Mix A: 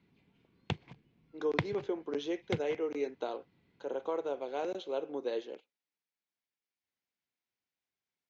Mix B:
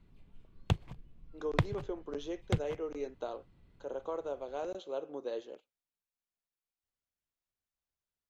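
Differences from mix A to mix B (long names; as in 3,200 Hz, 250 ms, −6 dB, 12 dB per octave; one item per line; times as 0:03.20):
speech −5.0 dB
master: remove loudspeaker in its box 170–5,900 Hz, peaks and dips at 600 Hz −5 dB, 1,200 Hz −5 dB, 2,200 Hz +5 dB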